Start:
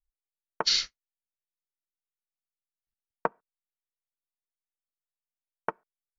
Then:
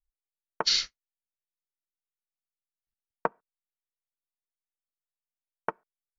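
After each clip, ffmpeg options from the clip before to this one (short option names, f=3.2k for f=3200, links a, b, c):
-af anull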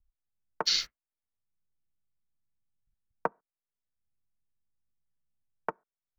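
-filter_complex "[0:a]acrossover=split=180|620|2200[a][b][c][d];[a]acompressor=mode=upward:threshold=-59dB:ratio=2.5[e];[d]aeval=exprs='sgn(val(0))*max(abs(val(0))-0.00266,0)':c=same[f];[e][b][c][f]amix=inputs=4:normalize=0,volume=-2dB"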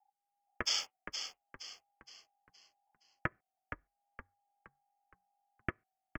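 -filter_complex "[0:a]aeval=exprs='val(0)*sin(2*PI*810*n/s)':c=same,asuperstop=centerf=3900:order=8:qfactor=4.1,asplit=6[a][b][c][d][e][f];[b]adelay=468,afreqshift=-47,volume=-8dB[g];[c]adelay=936,afreqshift=-94,volume=-15.7dB[h];[d]adelay=1404,afreqshift=-141,volume=-23.5dB[i];[e]adelay=1872,afreqshift=-188,volume=-31.2dB[j];[f]adelay=2340,afreqshift=-235,volume=-39dB[k];[a][g][h][i][j][k]amix=inputs=6:normalize=0,volume=-1.5dB"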